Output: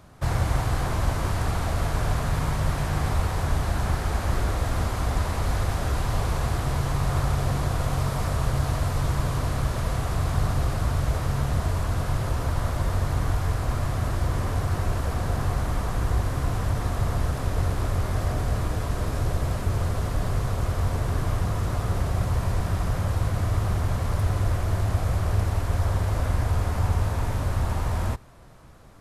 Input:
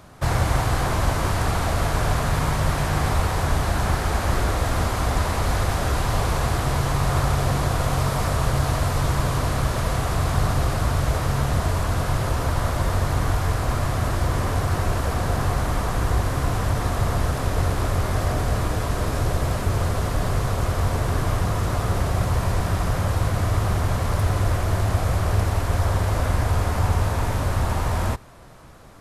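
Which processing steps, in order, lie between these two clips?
bass shelf 200 Hz +4.5 dB; trim -6 dB

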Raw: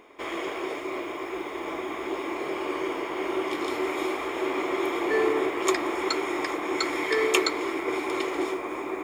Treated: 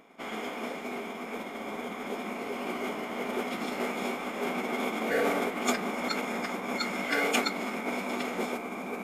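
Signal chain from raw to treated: modulation noise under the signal 23 dB; formant-preserving pitch shift -7.5 st; trim -3 dB

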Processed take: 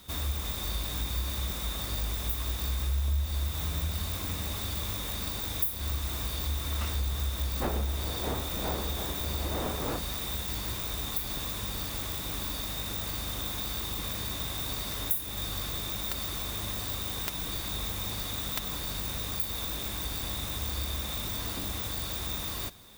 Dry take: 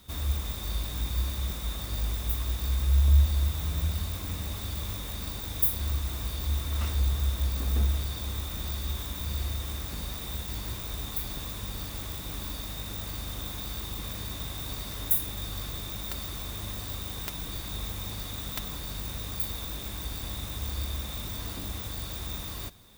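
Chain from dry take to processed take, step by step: 7.61–9.98 s: wind noise 580 Hz -29 dBFS; bass shelf 210 Hz -5.5 dB; compression 3:1, threshold -32 dBFS, peak gain reduction 10 dB; trim +4 dB

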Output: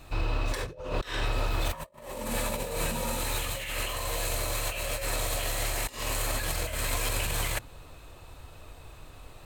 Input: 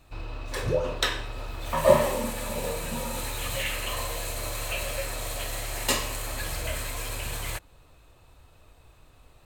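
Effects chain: hum notches 60/120/180/240 Hz; compressor with a negative ratio -34 dBFS, ratio -0.5; trim +3.5 dB

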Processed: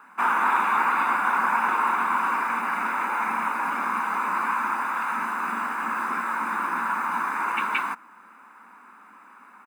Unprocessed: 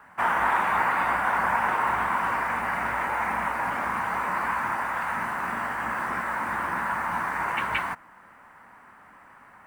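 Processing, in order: brick-wall FIR high-pass 190 Hz; comb 0.8 ms, depth 58%

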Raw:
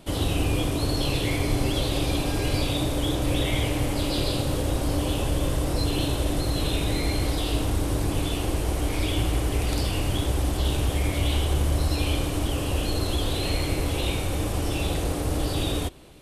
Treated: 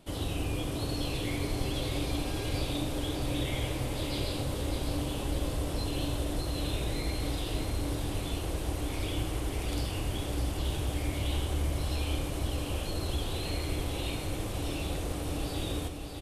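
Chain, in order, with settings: feedback delay 603 ms, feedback 55%, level -7 dB; trim -8.5 dB

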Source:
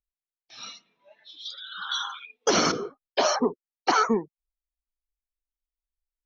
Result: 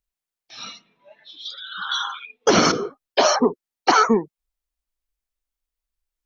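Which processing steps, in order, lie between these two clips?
0.63–2.63 s: tone controls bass +5 dB, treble -5 dB; trim +6 dB

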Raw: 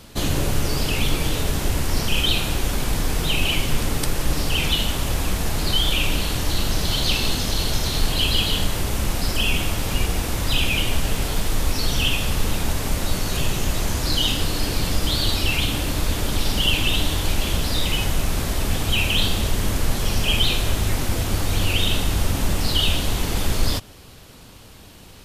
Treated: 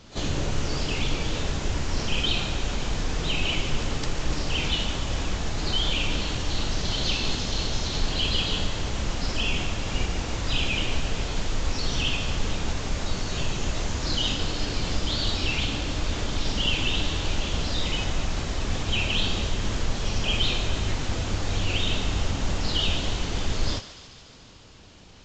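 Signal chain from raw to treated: thinning echo 145 ms, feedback 73%, high-pass 760 Hz, level -13 dB; trim -5 dB; AAC 32 kbps 16 kHz

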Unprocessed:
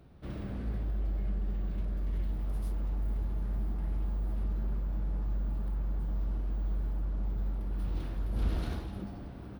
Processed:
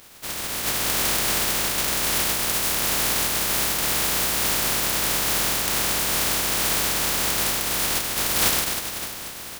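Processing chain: spectral contrast reduction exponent 0.11; trim +8.5 dB

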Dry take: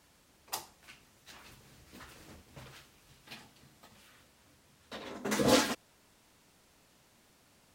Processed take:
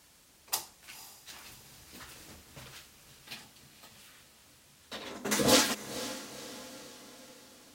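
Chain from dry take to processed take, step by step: treble shelf 2.7 kHz +8 dB; echo that smears into a reverb 489 ms, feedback 53%, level -14 dB

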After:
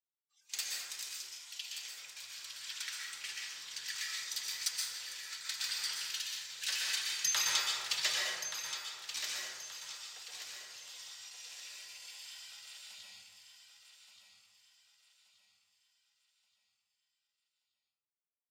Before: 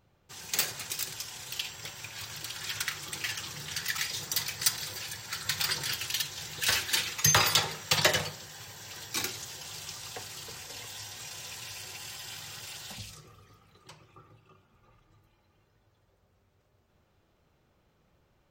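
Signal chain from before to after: spectral noise reduction 18 dB; gate -45 dBFS, range -12 dB; band-pass filter 4.9 kHz, Q 0.67; on a send: feedback delay 1177 ms, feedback 38%, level -9 dB; on the sum: plate-style reverb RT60 1.2 s, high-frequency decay 0.4×, pre-delay 110 ms, DRR -3 dB; trim -7.5 dB

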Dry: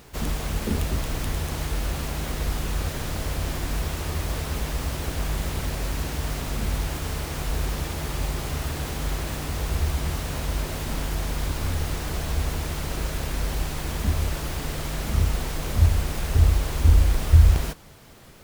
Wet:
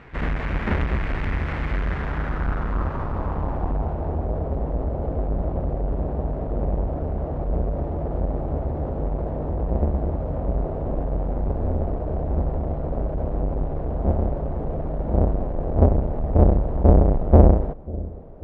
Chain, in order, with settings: square wave that keeps the level; bucket-brigade echo 544 ms, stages 2048, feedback 67%, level -20 dB; low-pass sweep 2 kHz -> 630 Hz, 1.75–4.32 s; trim -3 dB

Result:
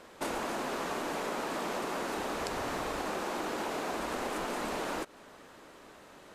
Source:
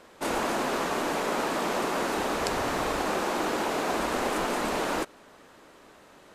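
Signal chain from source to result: compression, threshold -32 dBFS, peak gain reduction 8.5 dB

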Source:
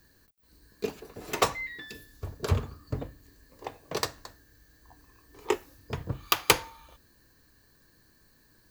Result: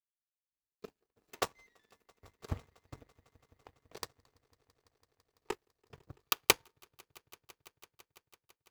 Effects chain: echo with a slow build-up 167 ms, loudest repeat 5, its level -16 dB; power-law waveshaper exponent 2; trim +1.5 dB

